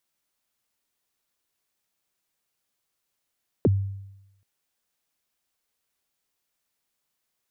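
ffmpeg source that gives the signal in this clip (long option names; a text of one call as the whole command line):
ffmpeg -f lavfi -i "aevalsrc='0.2*pow(10,-3*t/0.91)*sin(2*PI*(530*0.031/log(98/530)*(exp(log(98/530)*min(t,0.031)/0.031)-1)+98*max(t-0.031,0)))':duration=0.78:sample_rate=44100" out.wav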